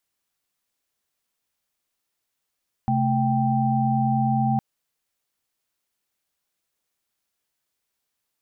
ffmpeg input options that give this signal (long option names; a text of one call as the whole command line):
ffmpeg -f lavfi -i "aevalsrc='0.0708*(sin(2*PI*130.81*t)+sin(2*PI*220*t)+sin(2*PI*783.99*t))':duration=1.71:sample_rate=44100" out.wav